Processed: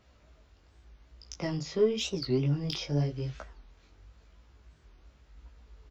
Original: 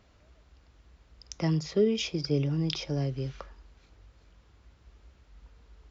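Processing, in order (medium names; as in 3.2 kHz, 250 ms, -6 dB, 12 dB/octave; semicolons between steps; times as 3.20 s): in parallel at -5 dB: saturation -25 dBFS, distortion -11 dB; on the sum: chorus 0.91 Hz, delay 17 ms, depth 6.2 ms; doubling 14 ms -8 dB; warped record 45 rpm, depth 250 cents; trim -2 dB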